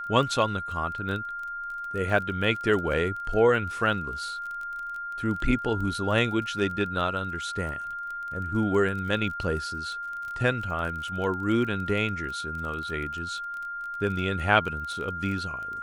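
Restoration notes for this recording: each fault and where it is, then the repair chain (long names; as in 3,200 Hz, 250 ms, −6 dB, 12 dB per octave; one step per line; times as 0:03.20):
surface crackle 22 per second −34 dBFS
whistle 1,400 Hz −32 dBFS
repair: click removal
notch filter 1,400 Hz, Q 30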